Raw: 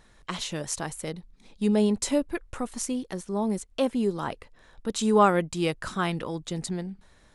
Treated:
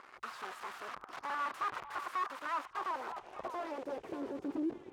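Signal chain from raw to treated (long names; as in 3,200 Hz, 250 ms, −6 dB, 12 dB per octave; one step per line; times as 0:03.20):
gliding playback speed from 123% → 175%
parametric band 370 Hz +11 dB 0.52 octaves
notch filter 830 Hz, Q 16
brickwall limiter −16.5 dBFS, peak gain reduction 11 dB
leveller curve on the samples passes 5
mains-hum notches 60/120 Hz
wrap-around overflow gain 26.5 dB
band-pass filter sweep 1,200 Hz → 320 Hz, 0:02.43–0:04.62
echo through a band-pass that steps 594 ms, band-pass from 1,000 Hz, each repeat 1.4 octaves, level −10 dB
level −1 dB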